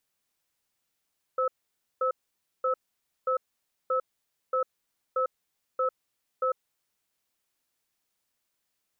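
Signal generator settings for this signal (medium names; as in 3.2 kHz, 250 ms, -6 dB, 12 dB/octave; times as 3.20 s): cadence 517 Hz, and 1.3 kHz, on 0.10 s, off 0.53 s, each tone -26 dBFS 5.27 s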